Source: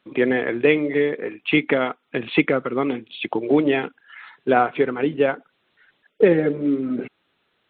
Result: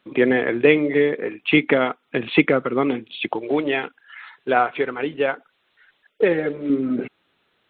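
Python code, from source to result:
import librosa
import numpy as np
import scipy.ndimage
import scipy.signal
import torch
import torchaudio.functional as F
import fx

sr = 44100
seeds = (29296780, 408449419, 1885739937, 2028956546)

y = fx.peak_eq(x, sr, hz=180.0, db=-9.0, octaves=2.8, at=(3.35, 6.7))
y = F.gain(torch.from_numpy(y), 2.0).numpy()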